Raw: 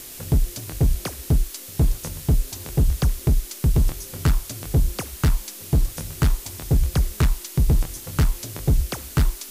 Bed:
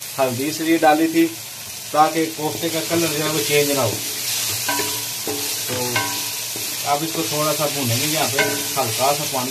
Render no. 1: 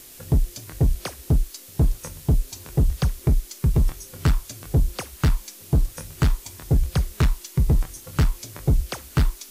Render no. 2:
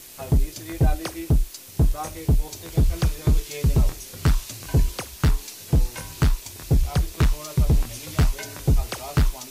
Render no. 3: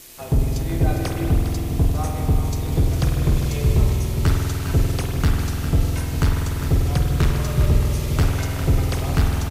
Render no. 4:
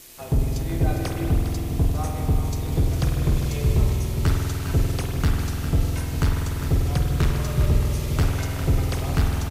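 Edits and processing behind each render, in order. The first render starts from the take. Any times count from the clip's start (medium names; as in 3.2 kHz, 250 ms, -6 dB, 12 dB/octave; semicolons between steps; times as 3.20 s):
noise print and reduce 6 dB
add bed -18.5 dB
delay 406 ms -10 dB; spring tank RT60 3.8 s, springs 48 ms, chirp 30 ms, DRR -1 dB
trim -2.5 dB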